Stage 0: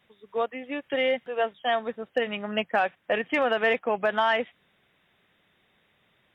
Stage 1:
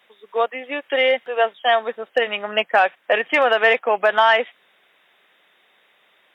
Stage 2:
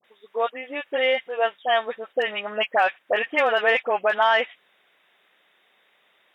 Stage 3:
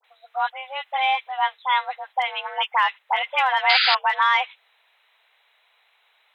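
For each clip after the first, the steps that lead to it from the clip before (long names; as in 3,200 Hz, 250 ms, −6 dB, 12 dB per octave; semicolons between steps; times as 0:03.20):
high-pass filter 470 Hz 12 dB per octave; level +9 dB
all-pass dispersion highs, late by 45 ms, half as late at 1,200 Hz; level −4 dB
sound drawn into the spectrogram noise, 0:03.69–0:03.95, 1,000–4,700 Hz −19 dBFS; frequency shifter +270 Hz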